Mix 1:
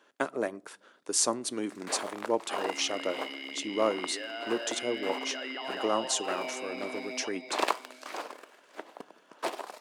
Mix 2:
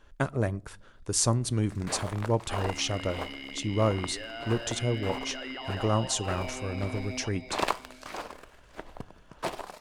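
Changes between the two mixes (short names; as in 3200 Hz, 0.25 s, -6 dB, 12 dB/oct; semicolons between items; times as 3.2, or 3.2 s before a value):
second sound: send off; master: remove HPF 270 Hz 24 dB/oct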